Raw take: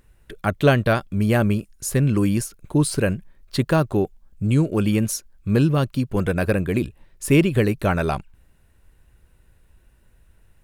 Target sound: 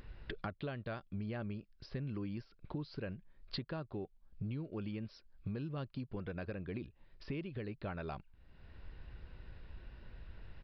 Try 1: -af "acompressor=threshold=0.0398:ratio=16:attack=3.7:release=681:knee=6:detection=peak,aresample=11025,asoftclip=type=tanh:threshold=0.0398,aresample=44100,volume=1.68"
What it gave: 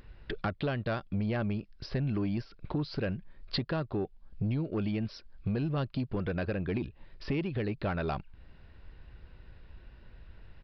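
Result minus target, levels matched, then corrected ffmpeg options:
compression: peak gain reduction -11 dB
-af "acompressor=threshold=0.01:ratio=16:attack=3.7:release=681:knee=6:detection=peak,aresample=11025,asoftclip=type=tanh:threshold=0.0398,aresample=44100,volume=1.68"

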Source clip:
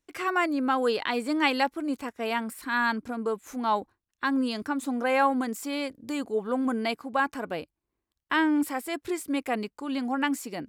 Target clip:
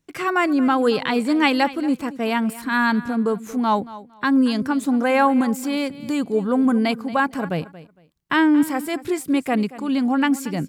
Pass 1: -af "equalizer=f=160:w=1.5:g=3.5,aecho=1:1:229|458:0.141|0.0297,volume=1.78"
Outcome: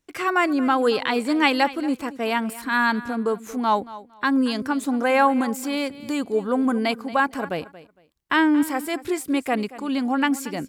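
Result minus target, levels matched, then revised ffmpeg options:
125 Hz band -5.5 dB
-af "equalizer=f=160:w=1.5:g=14.5,aecho=1:1:229|458:0.141|0.0297,volume=1.78"

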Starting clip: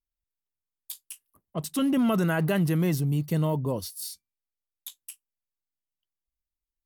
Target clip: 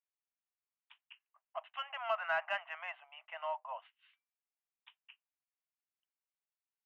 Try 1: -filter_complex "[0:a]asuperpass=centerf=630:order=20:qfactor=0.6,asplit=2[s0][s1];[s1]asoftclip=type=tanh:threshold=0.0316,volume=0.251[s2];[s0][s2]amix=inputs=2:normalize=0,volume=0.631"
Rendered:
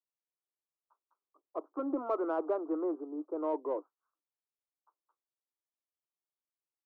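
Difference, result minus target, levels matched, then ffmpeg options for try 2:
1 kHz band -5.0 dB
-filter_complex "[0:a]asuperpass=centerf=1400:order=20:qfactor=0.6,asplit=2[s0][s1];[s1]asoftclip=type=tanh:threshold=0.0316,volume=0.251[s2];[s0][s2]amix=inputs=2:normalize=0,volume=0.631"

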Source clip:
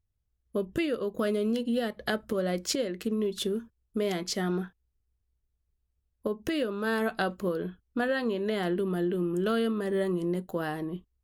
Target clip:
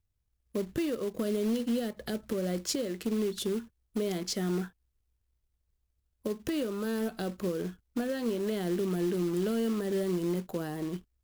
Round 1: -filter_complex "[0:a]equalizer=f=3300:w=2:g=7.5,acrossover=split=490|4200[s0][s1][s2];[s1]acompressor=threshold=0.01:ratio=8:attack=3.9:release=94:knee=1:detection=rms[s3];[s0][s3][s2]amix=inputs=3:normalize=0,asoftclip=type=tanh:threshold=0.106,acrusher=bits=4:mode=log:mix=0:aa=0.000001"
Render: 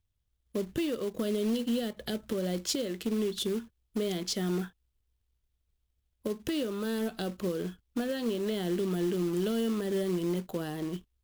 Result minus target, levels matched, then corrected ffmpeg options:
4 kHz band +3.0 dB
-filter_complex "[0:a]acrossover=split=490|4200[s0][s1][s2];[s1]acompressor=threshold=0.01:ratio=8:attack=3.9:release=94:knee=1:detection=rms[s3];[s0][s3][s2]amix=inputs=3:normalize=0,asoftclip=type=tanh:threshold=0.106,acrusher=bits=4:mode=log:mix=0:aa=0.000001"

